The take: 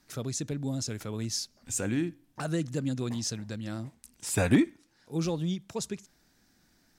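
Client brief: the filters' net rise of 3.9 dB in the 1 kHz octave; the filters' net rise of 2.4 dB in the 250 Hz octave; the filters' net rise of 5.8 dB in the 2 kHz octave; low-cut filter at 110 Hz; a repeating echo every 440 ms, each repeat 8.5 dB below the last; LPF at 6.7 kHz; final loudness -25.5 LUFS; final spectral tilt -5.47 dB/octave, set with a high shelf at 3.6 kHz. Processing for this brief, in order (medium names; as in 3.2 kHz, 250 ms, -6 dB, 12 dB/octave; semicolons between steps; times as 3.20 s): high-pass 110 Hz; low-pass 6.7 kHz; peaking EQ 250 Hz +3 dB; peaking EQ 1 kHz +3.5 dB; peaking EQ 2 kHz +7 dB; treble shelf 3.6 kHz -3 dB; feedback delay 440 ms, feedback 38%, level -8.5 dB; trim +4.5 dB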